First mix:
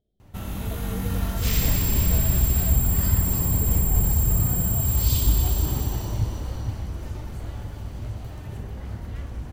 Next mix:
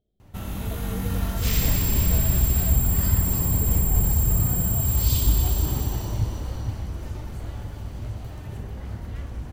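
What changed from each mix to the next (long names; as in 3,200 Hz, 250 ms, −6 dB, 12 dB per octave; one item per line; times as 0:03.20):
nothing changed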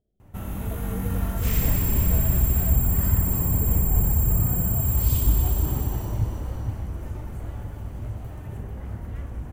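master: add parametric band 4,400 Hz −11.5 dB 1.2 octaves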